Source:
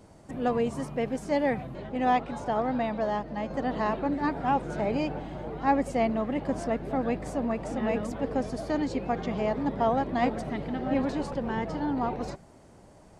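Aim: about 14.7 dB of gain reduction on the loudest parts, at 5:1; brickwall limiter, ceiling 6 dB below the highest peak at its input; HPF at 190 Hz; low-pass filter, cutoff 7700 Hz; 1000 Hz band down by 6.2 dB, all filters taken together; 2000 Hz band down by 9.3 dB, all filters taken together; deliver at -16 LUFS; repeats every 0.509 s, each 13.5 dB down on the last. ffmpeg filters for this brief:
-af "highpass=190,lowpass=7.7k,equalizer=f=1k:t=o:g=-7.5,equalizer=f=2k:t=o:g=-9,acompressor=threshold=-41dB:ratio=5,alimiter=level_in=11.5dB:limit=-24dB:level=0:latency=1,volume=-11.5dB,aecho=1:1:509|1018:0.211|0.0444,volume=29dB"

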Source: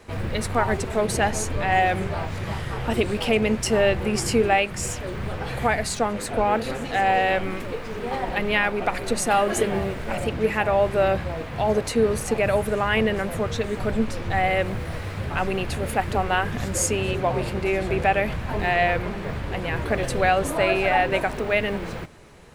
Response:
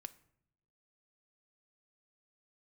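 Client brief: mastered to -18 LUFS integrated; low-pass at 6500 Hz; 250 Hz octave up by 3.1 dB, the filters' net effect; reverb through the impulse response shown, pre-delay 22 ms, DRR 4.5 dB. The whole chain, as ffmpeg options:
-filter_complex "[0:a]lowpass=6.5k,equalizer=f=250:t=o:g=4,asplit=2[a][b];[1:a]atrim=start_sample=2205,adelay=22[c];[b][c]afir=irnorm=-1:irlink=0,volume=1dB[d];[a][d]amix=inputs=2:normalize=0,volume=3.5dB"

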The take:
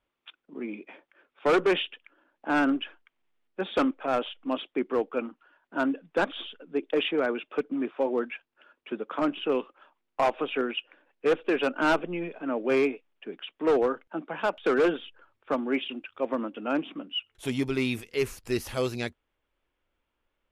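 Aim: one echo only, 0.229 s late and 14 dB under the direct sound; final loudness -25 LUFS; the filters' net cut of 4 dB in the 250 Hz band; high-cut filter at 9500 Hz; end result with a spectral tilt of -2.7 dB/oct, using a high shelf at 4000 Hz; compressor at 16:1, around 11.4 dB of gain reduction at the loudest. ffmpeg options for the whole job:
-af "lowpass=9.5k,equalizer=f=250:t=o:g=-5,highshelf=f=4k:g=-3,acompressor=threshold=-32dB:ratio=16,aecho=1:1:229:0.2,volume=13.5dB"

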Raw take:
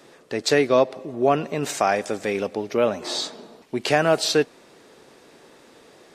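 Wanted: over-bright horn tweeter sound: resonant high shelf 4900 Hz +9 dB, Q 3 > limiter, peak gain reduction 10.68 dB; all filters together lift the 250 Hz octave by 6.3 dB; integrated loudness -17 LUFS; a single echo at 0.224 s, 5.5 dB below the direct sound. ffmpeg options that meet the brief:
-af "equalizer=f=250:t=o:g=8,highshelf=f=4.9k:t=q:w=3:g=9,aecho=1:1:224:0.531,volume=5.5dB,alimiter=limit=-7dB:level=0:latency=1"

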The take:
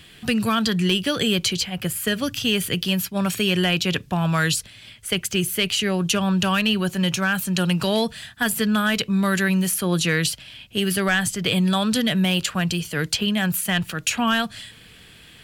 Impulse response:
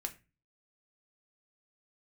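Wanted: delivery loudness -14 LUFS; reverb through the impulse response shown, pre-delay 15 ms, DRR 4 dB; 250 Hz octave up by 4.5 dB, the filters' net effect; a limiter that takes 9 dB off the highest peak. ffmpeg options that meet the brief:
-filter_complex "[0:a]equalizer=f=250:t=o:g=6.5,alimiter=limit=-16dB:level=0:latency=1,asplit=2[a][b];[1:a]atrim=start_sample=2205,adelay=15[c];[b][c]afir=irnorm=-1:irlink=0,volume=-3dB[d];[a][d]amix=inputs=2:normalize=0,volume=8.5dB"

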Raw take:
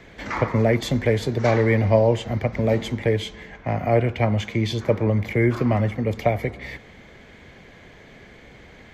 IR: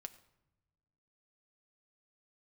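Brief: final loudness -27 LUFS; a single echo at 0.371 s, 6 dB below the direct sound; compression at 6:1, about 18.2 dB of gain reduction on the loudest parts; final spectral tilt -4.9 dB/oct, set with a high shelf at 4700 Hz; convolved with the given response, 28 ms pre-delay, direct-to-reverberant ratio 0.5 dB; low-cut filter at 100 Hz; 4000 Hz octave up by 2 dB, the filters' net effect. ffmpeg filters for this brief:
-filter_complex "[0:a]highpass=100,equalizer=f=4k:t=o:g=4.5,highshelf=f=4.7k:g=-4.5,acompressor=threshold=-34dB:ratio=6,aecho=1:1:371:0.501,asplit=2[a][b];[1:a]atrim=start_sample=2205,adelay=28[c];[b][c]afir=irnorm=-1:irlink=0,volume=4.5dB[d];[a][d]amix=inputs=2:normalize=0,volume=7.5dB"

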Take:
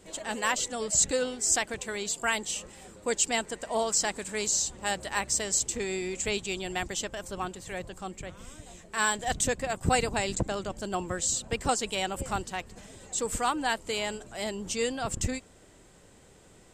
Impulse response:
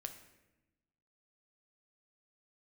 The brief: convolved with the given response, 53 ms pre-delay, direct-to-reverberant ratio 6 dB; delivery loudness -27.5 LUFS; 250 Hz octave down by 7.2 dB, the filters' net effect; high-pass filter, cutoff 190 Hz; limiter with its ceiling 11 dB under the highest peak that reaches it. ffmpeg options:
-filter_complex "[0:a]highpass=190,equalizer=f=250:t=o:g=-7.5,alimiter=limit=-22.5dB:level=0:latency=1,asplit=2[a][b];[1:a]atrim=start_sample=2205,adelay=53[c];[b][c]afir=irnorm=-1:irlink=0,volume=-3dB[d];[a][d]amix=inputs=2:normalize=0,volume=5.5dB"

